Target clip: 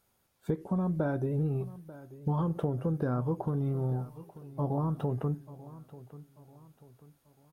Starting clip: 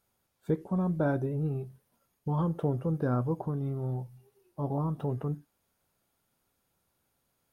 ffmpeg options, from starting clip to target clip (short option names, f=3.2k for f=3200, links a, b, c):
-filter_complex "[0:a]acompressor=threshold=-30dB:ratio=6,asplit=2[a][b];[b]aecho=0:1:889|1778|2667:0.133|0.0547|0.0224[c];[a][c]amix=inputs=2:normalize=0,volume=3.5dB"